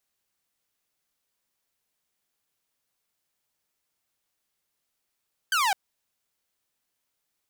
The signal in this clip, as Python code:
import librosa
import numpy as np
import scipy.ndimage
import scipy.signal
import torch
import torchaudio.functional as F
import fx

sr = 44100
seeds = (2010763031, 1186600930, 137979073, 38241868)

y = fx.laser_zap(sr, level_db=-18.5, start_hz=1600.0, end_hz=740.0, length_s=0.21, wave='saw')